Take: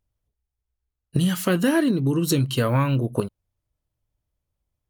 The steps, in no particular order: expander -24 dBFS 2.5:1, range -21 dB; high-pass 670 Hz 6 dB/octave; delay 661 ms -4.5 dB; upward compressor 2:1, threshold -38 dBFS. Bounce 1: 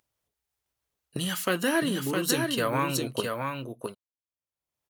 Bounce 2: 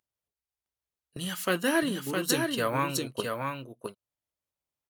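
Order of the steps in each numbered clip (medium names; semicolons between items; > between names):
expander > delay > upward compressor > high-pass; upward compressor > high-pass > expander > delay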